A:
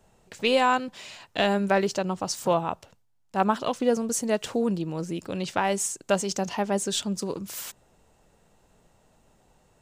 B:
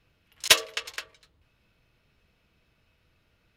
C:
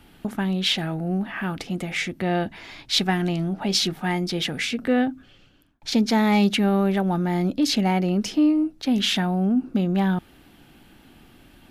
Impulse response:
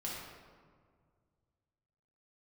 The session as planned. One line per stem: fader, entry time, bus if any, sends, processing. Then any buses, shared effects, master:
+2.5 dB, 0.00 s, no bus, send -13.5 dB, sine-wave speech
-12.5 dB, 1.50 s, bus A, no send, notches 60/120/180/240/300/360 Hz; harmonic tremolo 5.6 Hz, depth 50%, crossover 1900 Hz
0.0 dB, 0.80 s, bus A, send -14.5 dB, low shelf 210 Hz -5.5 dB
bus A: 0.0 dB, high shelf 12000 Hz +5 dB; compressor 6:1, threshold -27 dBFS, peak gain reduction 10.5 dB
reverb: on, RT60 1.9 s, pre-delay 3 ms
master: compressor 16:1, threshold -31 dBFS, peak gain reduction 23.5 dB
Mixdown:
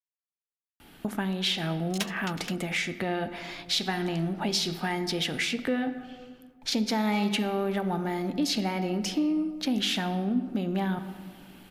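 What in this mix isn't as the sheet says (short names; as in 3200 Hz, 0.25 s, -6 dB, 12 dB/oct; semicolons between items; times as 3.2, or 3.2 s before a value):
stem A: muted; stem B -12.5 dB -> -3.5 dB; master: missing compressor 16:1, threshold -31 dBFS, peak gain reduction 23.5 dB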